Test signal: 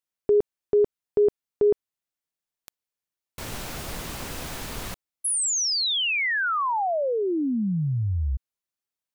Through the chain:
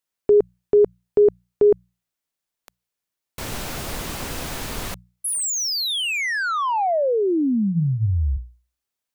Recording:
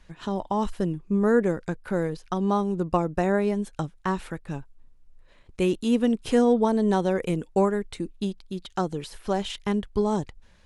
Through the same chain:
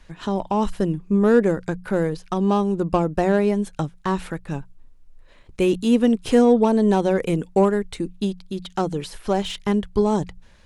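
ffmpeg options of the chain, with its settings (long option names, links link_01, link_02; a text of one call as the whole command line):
ffmpeg -i in.wav -filter_complex "[0:a]bandreject=frequency=60:width_type=h:width=6,bandreject=frequency=120:width_type=h:width=6,bandreject=frequency=180:width_type=h:width=6,acrossover=split=760[link_01][link_02];[link_02]asoftclip=type=tanh:threshold=-27dB[link_03];[link_01][link_03]amix=inputs=2:normalize=0,volume=5dB" out.wav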